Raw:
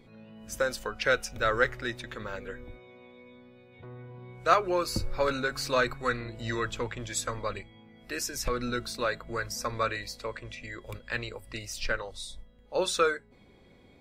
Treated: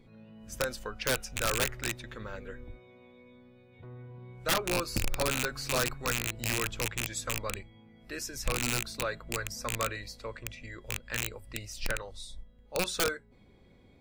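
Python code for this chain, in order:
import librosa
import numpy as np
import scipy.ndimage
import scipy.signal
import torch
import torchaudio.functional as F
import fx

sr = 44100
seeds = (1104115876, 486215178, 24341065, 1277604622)

y = fx.rattle_buzz(x, sr, strikes_db=-37.0, level_db=-12.0)
y = (np.mod(10.0 ** (15.0 / 20.0) * y + 1.0, 2.0) - 1.0) / 10.0 ** (15.0 / 20.0)
y = fx.low_shelf(y, sr, hz=200.0, db=6.5)
y = y * librosa.db_to_amplitude(-5.0)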